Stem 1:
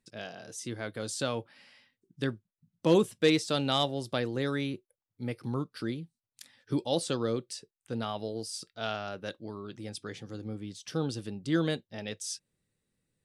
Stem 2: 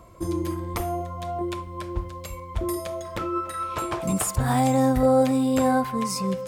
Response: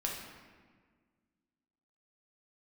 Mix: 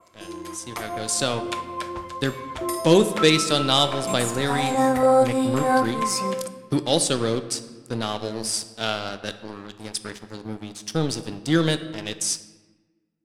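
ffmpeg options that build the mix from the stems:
-filter_complex "[0:a]aemphasis=mode=production:type=50fm,aeval=exprs='sgn(val(0))*max(abs(val(0))-0.00841,0)':c=same,volume=-2dB,asplit=3[a][b][c];[b]volume=-9dB[d];[1:a]highpass=f=810:p=1,adynamicequalizer=threshold=0.00355:dfrequency=4700:dqfactor=1:tfrequency=4700:tqfactor=1:attack=5:release=100:ratio=0.375:range=2:mode=cutabove:tftype=bell,acontrast=56,volume=-9dB,asplit=2[e][f];[f]volume=-10dB[g];[c]apad=whole_len=285741[h];[e][h]sidechaincompress=threshold=-46dB:ratio=8:attack=41:release=115[i];[2:a]atrim=start_sample=2205[j];[d][g]amix=inputs=2:normalize=0[k];[k][j]afir=irnorm=-1:irlink=0[l];[a][i][l]amix=inputs=3:normalize=0,lowpass=10k,dynaudnorm=f=110:g=17:m=9dB"

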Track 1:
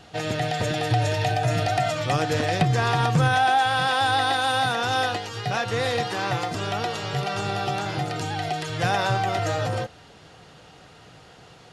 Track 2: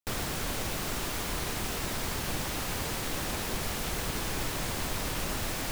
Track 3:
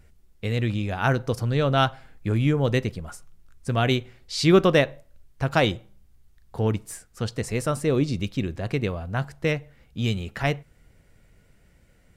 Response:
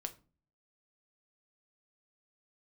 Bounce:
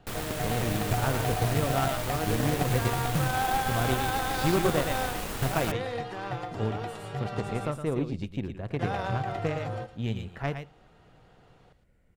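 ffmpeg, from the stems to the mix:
-filter_complex "[0:a]volume=-4dB,asplit=3[a][b][c];[a]atrim=end=7.67,asetpts=PTS-STARTPTS,afade=t=out:st=7.666:d=0.004:c=hsin[d];[b]atrim=start=7.67:end=8.79,asetpts=PTS-STARTPTS,volume=0[e];[c]atrim=start=8.79,asetpts=PTS-STARTPTS,afade=t=in:d=0.004:c=hsin[f];[d][e][f]concat=n=3:v=0:a=1,asplit=2[g][h];[h]volume=-16.5dB[i];[1:a]volume=1dB[j];[2:a]volume=-3dB,asplit=2[k][l];[l]volume=-10.5dB[m];[g][k]amix=inputs=2:normalize=0,highshelf=f=2.3k:g=-11,acompressor=threshold=-23dB:ratio=3,volume=0dB[n];[i][m]amix=inputs=2:normalize=0,aecho=0:1:112:1[o];[j][n][o]amix=inputs=3:normalize=0,equalizer=f=5.4k:t=o:w=0.77:g=-3.5,aeval=exprs='0.299*(cos(1*acos(clip(val(0)/0.299,-1,1)))-cos(1*PI/2))+0.0168*(cos(7*acos(clip(val(0)/0.299,-1,1)))-cos(7*PI/2))':c=same"

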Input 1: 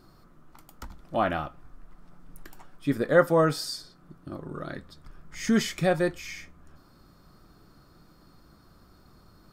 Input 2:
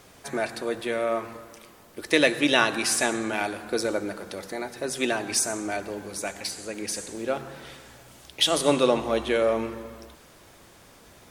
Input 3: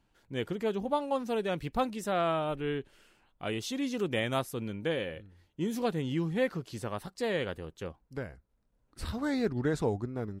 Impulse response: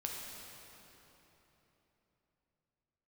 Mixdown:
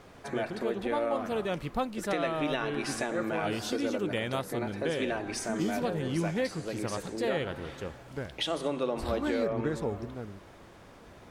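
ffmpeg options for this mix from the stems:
-filter_complex "[0:a]volume=-14dB[a];[1:a]lowpass=f=1.7k:p=1,acompressor=threshold=-40dB:ratio=1.5,volume=2dB[b];[2:a]dynaudnorm=f=240:g=9:m=5dB,volume=-4.5dB[c];[a][b][c]amix=inputs=3:normalize=0,alimiter=limit=-19.5dB:level=0:latency=1:release=261"

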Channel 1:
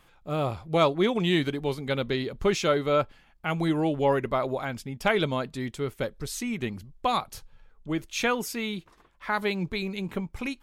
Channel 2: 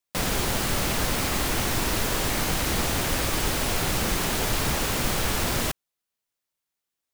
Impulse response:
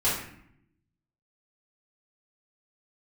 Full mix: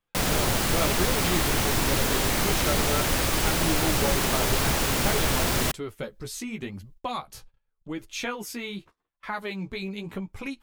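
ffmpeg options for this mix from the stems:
-filter_complex "[0:a]flanger=delay=9.7:depth=6.7:regen=11:speed=0.87:shape=sinusoidal,acompressor=threshold=-34dB:ratio=2,volume=2.5dB[a];[1:a]volume=1dB[b];[a][b]amix=inputs=2:normalize=0,agate=range=-23dB:threshold=-48dB:ratio=16:detection=peak"

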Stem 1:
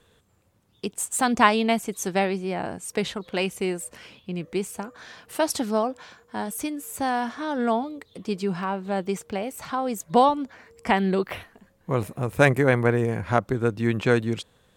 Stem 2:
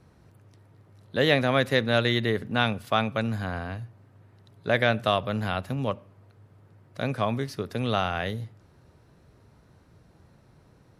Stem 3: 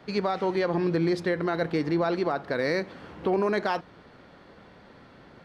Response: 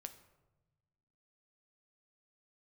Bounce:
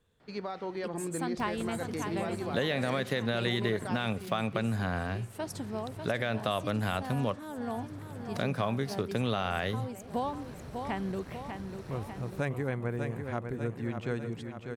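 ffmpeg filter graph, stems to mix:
-filter_complex "[0:a]lowshelf=f=250:g=7,volume=-15dB,asplit=2[a][b];[b]volume=-7.5dB[c];[1:a]acompressor=mode=upward:threshold=-32dB:ratio=2.5,alimiter=limit=-15dB:level=0:latency=1,aeval=exprs='sgn(val(0))*max(abs(val(0))-0.002,0)':c=same,adelay=1400,volume=1.5dB[d];[2:a]adelay=200,volume=-10.5dB[e];[c]aecho=0:1:595|1190|1785|2380|2975|3570|4165|4760|5355:1|0.57|0.325|0.185|0.106|0.0602|0.0343|0.0195|0.0111[f];[a][d][e][f]amix=inputs=4:normalize=0,acompressor=threshold=-27dB:ratio=3"

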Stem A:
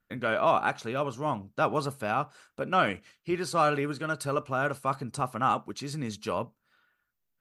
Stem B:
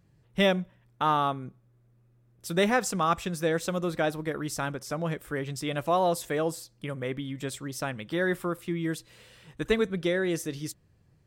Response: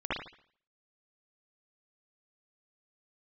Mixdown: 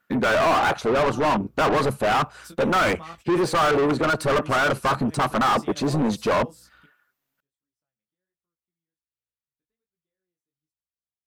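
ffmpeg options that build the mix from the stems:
-filter_complex "[0:a]afwtdn=0.0251,highshelf=f=8.9k:g=10,asplit=2[a][b];[b]highpass=f=720:p=1,volume=37dB,asoftclip=type=tanh:threshold=-11.5dB[c];[a][c]amix=inputs=2:normalize=0,lowpass=f=2.2k:p=1,volume=-6dB,volume=-1dB,asplit=2[d][e];[1:a]acompressor=threshold=-38dB:ratio=3,aeval=exprs='val(0)+0.00126*(sin(2*PI*60*n/s)+sin(2*PI*2*60*n/s)/2+sin(2*PI*3*60*n/s)/3+sin(2*PI*4*60*n/s)/4+sin(2*PI*5*60*n/s)/5)':c=same,flanger=delay=18:depth=5:speed=1.3,volume=-0.5dB[f];[e]apad=whole_len=496583[g];[f][g]sidechaingate=range=-49dB:threshold=-54dB:ratio=16:detection=peak[h];[d][h]amix=inputs=2:normalize=0"

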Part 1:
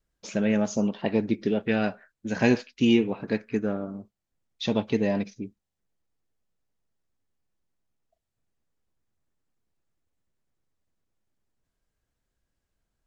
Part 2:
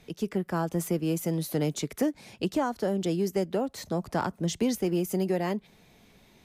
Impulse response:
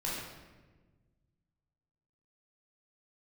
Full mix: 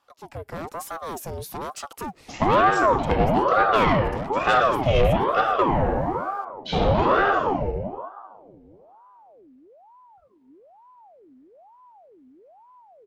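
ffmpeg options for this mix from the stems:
-filter_complex "[0:a]bass=f=250:g=1,treble=f=4k:g=-11,adelay=2050,volume=-1dB,asplit=2[a][b];[b]volume=-4dB[c];[1:a]asoftclip=type=tanh:threshold=-27.5dB,volume=-11dB,asplit=2[d][e];[e]apad=whole_len=666674[f];[a][f]sidechaingate=range=-33dB:threshold=-58dB:ratio=16:detection=peak[g];[2:a]atrim=start_sample=2205[h];[c][h]afir=irnorm=-1:irlink=0[i];[g][d][i]amix=inputs=3:normalize=0,dynaudnorm=f=190:g=3:m=13.5dB,asoftclip=type=tanh:threshold=-10dB,aeval=exprs='val(0)*sin(2*PI*630*n/s+630*0.6/1.1*sin(2*PI*1.1*n/s))':c=same"

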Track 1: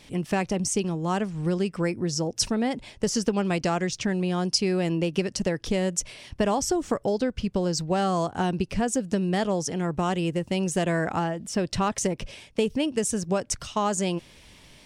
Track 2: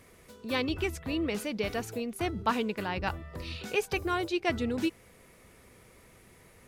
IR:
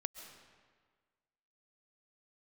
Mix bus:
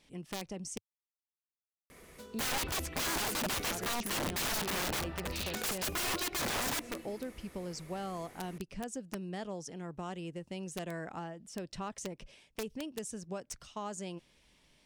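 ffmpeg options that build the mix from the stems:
-filter_complex "[0:a]volume=-15dB,asplit=3[a][b][c];[a]atrim=end=0.78,asetpts=PTS-STARTPTS,afade=t=out:st=0.776:d=0.004:c=hsin[d];[b]atrim=start=0.78:end=2.93,asetpts=PTS-STARTPTS,volume=0[e];[c]atrim=start=2.93,asetpts=PTS-STARTPTS,afade=t=in:d=0.004:c=hsin[f];[d][e][f]concat=n=3:v=0:a=1[g];[1:a]adelay=1900,volume=-0.5dB,asplit=2[h][i];[i]volume=-8dB[j];[2:a]atrim=start_sample=2205[k];[j][k]afir=irnorm=-1:irlink=0[l];[g][h][l]amix=inputs=3:normalize=0,equalizer=f=100:w=4.8:g=-14.5,aeval=exprs='(mod(28.2*val(0)+1,2)-1)/28.2':c=same"

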